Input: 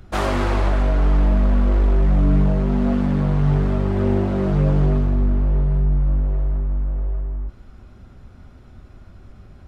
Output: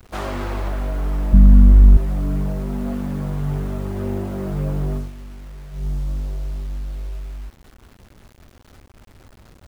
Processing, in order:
0:01.33–0:01.97: low shelf with overshoot 280 Hz +13.5 dB, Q 1.5
0:04.96–0:05.87: duck −13 dB, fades 0.16 s
bit reduction 7 bits
level −6 dB

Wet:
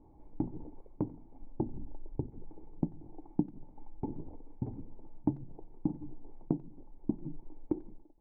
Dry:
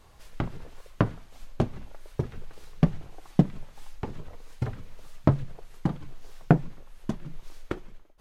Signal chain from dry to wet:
0:01.65–0:02.30: low-shelf EQ 150 Hz +10 dB
downward compressor 6 to 1, threshold −30 dBFS, peak gain reduction 16.5 dB
formant resonators in series u
far-end echo of a speakerphone 90 ms, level −22 dB
level +10.5 dB

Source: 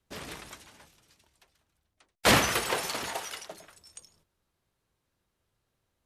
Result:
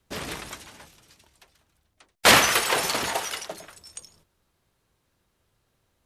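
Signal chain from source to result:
0:02.26–0:02.76: low-shelf EQ 390 Hz −10.5 dB
level +7.5 dB

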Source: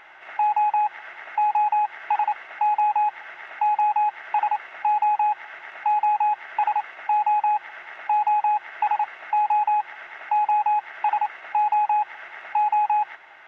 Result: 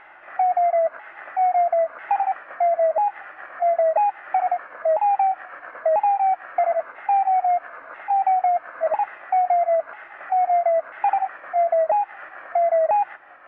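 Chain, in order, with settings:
pitch shifter swept by a sawtooth −5 semitones, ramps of 993 ms
low-pass filter 2,100 Hz 12 dB per octave
level +2.5 dB

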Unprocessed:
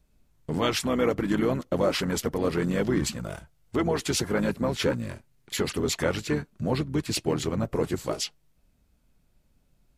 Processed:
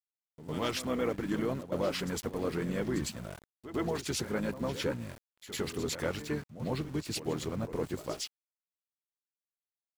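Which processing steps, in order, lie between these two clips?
centre clipping without the shift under −39 dBFS
backwards echo 105 ms −12.5 dB
level −7.5 dB

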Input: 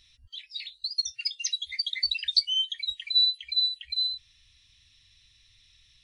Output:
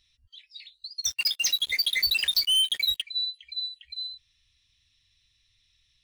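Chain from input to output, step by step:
0:01.04–0:03.02: leveller curve on the samples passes 5
level −7.5 dB

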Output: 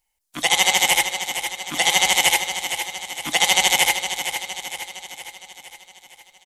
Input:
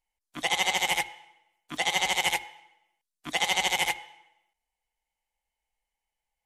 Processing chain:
high-shelf EQ 4,500 Hz +9.5 dB
repeating echo 462 ms, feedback 55%, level −9 dB
on a send at −20 dB: convolution reverb RT60 1.2 s, pre-delay 3 ms
on the sum: level +6 dB

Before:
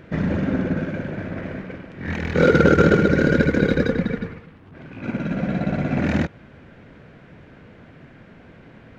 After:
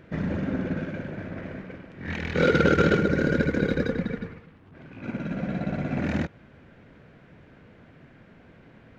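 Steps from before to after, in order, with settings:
0:00.60–0:02.99: dynamic equaliser 3,200 Hz, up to +6 dB, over −39 dBFS, Q 0.82
level −6 dB

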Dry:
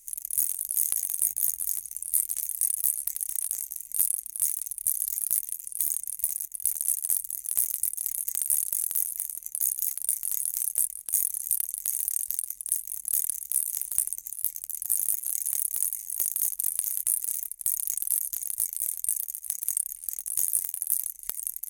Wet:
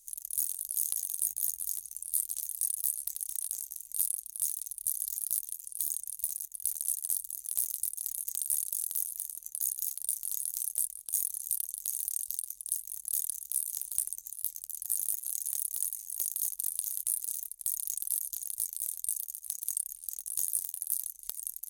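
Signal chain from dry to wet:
octave-band graphic EQ 250/2,000/4,000 Hz −5/−10/+8 dB
level −6 dB

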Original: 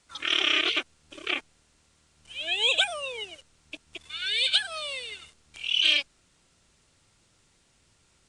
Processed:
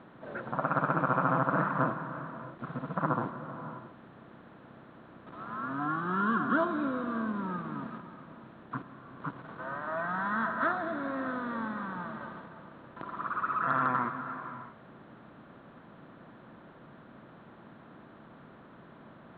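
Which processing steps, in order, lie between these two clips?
compressor on every frequency bin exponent 0.6
resonant band-pass 530 Hz, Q 0.65
reverb whose tail is shaped and stops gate 300 ms flat, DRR 8 dB
wrong playback speed 78 rpm record played at 33 rpm
level +1.5 dB

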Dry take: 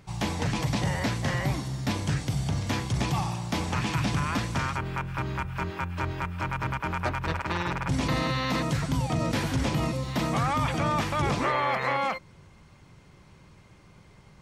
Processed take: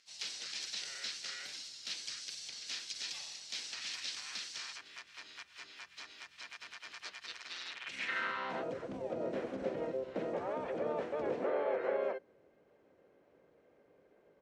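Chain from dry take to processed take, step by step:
notch filter 4,700 Hz, Q 5.7
in parallel at −9.5 dB: hard clipping −24.5 dBFS, distortion −12 dB
on the sum: graphic EQ with 10 bands 125 Hz −9 dB, 250 Hz +4 dB, 500 Hz +6 dB, 1,000 Hz −6 dB, 2,000 Hz +6 dB, 4,000 Hz +5 dB, 8,000 Hz +8 dB
pitch-shifted copies added −5 semitones 0 dB, +4 semitones −11 dB
band-pass filter sweep 4,700 Hz → 530 Hz, 0:07.65–0:08.74
level −9 dB

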